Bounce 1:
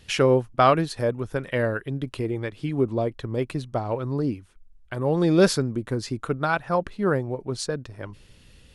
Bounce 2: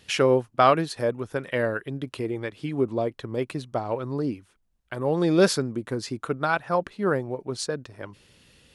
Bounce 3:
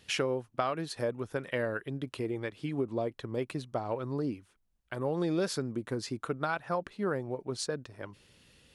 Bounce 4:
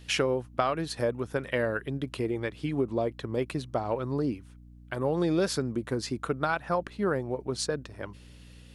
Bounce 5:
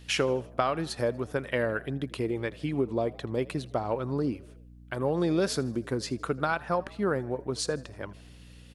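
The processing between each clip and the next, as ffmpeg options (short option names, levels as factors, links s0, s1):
-af "highpass=f=190:p=1"
-af "acompressor=threshold=0.0794:ratio=12,volume=0.596"
-af "aeval=exprs='val(0)+0.00224*(sin(2*PI*60*n/s)+sin(2*PI*2*60*n/s)/2+sin(2*PI*3*60*n/s)/3+sin(2*PI*4*60*n/s)/4+sin(2*PI*5*60*n/s)/5)':c=same,volume=1.58"
-filter_complex "[0:a]asplit=5[s0][s1][s2][s3][s4];[s1]adelay=80,afreqshift=50,volume=0.0794[s5];[s2]adelay=160,afreqshift=100,volume=0.0422[s6];[s3]adelay=240,afreqshift=150,volume=0.0224[s7];[s4]adelay=320,afreqshift=200,volume=0.0119[s8];[s0][s5][s6][s7][s8]amix=inputs=5:normalize=0"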